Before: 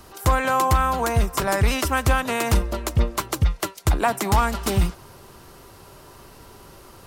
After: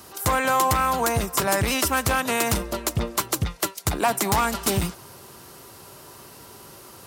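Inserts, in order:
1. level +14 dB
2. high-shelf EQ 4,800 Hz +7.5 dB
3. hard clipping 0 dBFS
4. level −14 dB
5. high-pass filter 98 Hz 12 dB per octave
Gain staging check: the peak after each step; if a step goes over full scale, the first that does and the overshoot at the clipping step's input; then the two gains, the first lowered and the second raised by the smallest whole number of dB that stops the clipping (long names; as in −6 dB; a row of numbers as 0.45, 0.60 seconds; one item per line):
+5.0, +9.0, 0.0, −14.0, −8.5 dBFS
step 1, 9.0 dB
step 1 +5 dB, step 4 −5 dB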